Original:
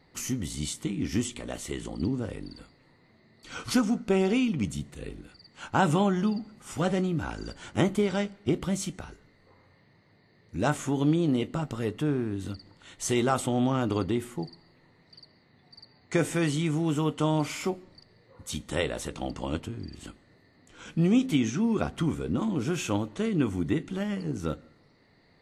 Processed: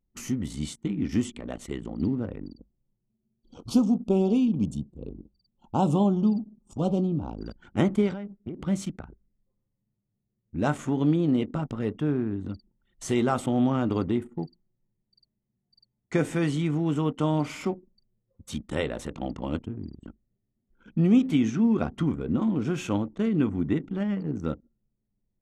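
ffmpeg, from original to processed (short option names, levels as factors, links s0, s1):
-filter_complex "[0:a]asettb=1/sr,asplit=3[s0][s1][s2];[s0]atrim=end=2.534[s3];[s1]atrim=start=2.53:end=7.41,asetpts=PTS-STARTPTS,afade=t=in:d=0.004:c=qsin,afade=t=out:st=4.876:d=0.004:c=qsin,asuperstop=centerf=1800:order=4:qfactor=0.82[s4];[s2]atrim=start=7.406[s5];[s3][s4]acrossfade=d=0.004:c1=hsin:c2=qsin[s6];[s6][s5]acrossfade=d=0.004:c1=qsin:c2=hsin,asettb=1/sr,asplit=3[s7][s8][s9];[s7]atrim=end=8.124[s10];[s8]atrim=start=8.12:end=8.66,asetpts=PTS-STARTPTS,afade=t=in:d=0.004:c=qsin,afade=t=out:st=0.536:d=0.004:c=qsin,acompressor=threshold=0.0251:ratio=12:attack=3.2:release=140:knee=1:detection=peak[s11];[s9]atrim=start=8.656[s12];[s10][s11]acrossfade=d=0.004:c1=hsin:c2=qsin[s13];[s13][s12]acrossfade=d=0.004:c1=qsin:c2=hsin,equalizer=f=220:t=o:w=0.6:g=4.5,anlmdn=0.631,highshelf=f=3500:g=-7.5"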